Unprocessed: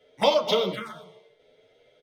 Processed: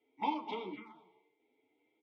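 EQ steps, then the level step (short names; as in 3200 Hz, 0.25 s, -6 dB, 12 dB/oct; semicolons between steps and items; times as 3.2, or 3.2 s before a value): vowel filter u; bell 160 Hz -10.5 dB 0.32 oct; high shelf 6400 Hz -10.5 dB; +1.5 dB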